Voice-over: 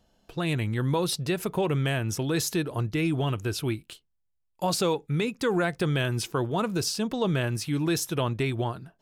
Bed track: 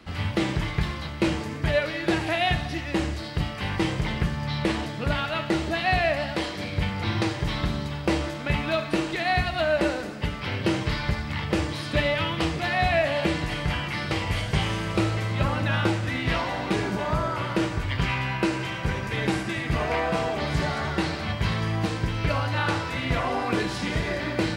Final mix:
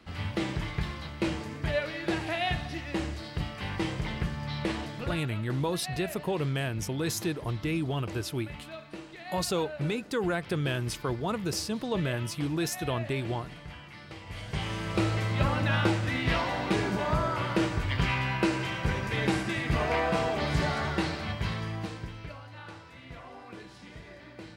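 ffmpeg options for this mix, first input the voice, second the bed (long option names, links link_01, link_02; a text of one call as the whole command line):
ffmpeg -i stem1.wav -i stem2.wav -filter_complex "[0:a]adelay=4700,volume=-4dB[link_01];[1:a]volume=9.5dB,afade=type=out:start_time=5.02:duration=0.2:silence=0.266073,afade=type=in:start_time=14.24:duration=0.93:silence=0.16788,afade=type=out:start_time=20.75:duration=1.62:silence=0.125893[link_02];[link_01][link_02]amix=inputs=2:normalize=0" out.wav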